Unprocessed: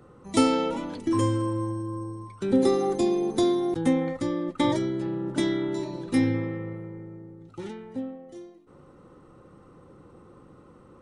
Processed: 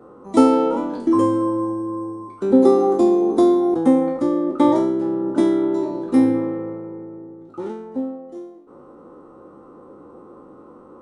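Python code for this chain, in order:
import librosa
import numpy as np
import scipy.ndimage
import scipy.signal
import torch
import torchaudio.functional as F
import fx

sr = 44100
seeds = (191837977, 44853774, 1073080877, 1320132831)

y = fx.spec_trails(x, sr, decay_s=0.53)
y = fx.band_shelf(y, sr, hz=540.0, db=14.0, octaves=3.0)
y = y * librosa.db_to_amplitude(-6.0)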